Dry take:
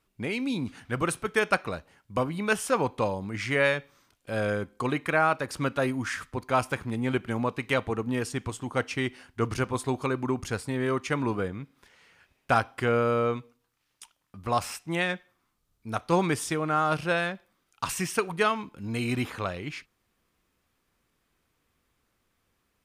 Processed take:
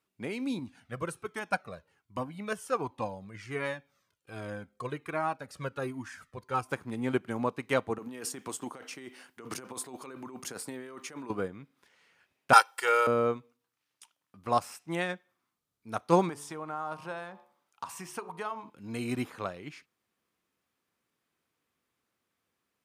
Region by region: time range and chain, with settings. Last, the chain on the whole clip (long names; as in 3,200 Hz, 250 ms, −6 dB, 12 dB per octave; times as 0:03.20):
0:00.59–0:06.69: low-shelf EQ 120 Hz +8 dB + flanger whose copies keep moving one way falling 1.3 Hz
0:07.98–0:11.30: high-pass filter 210 Hz + high-shelf EQ 11,000 Hz +10 dB + compressor whose output falls as the input rises −35 dBFS
0:12.53–0:13.07: high-pass filter 730 Hz + high-shelf EQ 2,100 Hz +12 dB + comb filter 2.2 ms, depth 80%
0:16.29–0:18.70: parametric band 920 Hz +10 dB 0.74 octaves + hum removal 72.05 Hz, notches 17 + downward compressor 2 to 1, threshold −36 dBFS
whole clip: Bessel high-pass filter 160 Hz; dynamic equaliser 2,800 Hz, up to −6 dB, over −43 dBFS, Q 0.83; expander for the loud parts 1.5 to 1, over −39 dBFS; level +4 dB